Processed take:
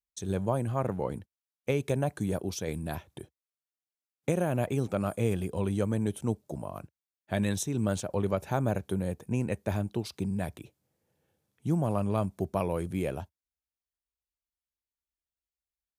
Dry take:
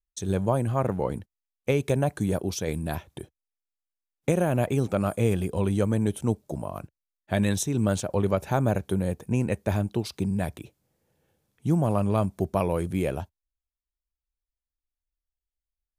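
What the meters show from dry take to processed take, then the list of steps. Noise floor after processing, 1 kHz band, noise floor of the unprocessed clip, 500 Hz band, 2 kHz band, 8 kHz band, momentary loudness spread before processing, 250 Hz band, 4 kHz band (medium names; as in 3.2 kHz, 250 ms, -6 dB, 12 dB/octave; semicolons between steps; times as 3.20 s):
under -85 dBFS, -4.5 dB, under -85 dBFS, -4.5 dB, -4.5 dB, -4.5 dB, 10 LU, -4.5 dB, -4.5 dB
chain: high-pass 62 Hz; trim -4.5 dB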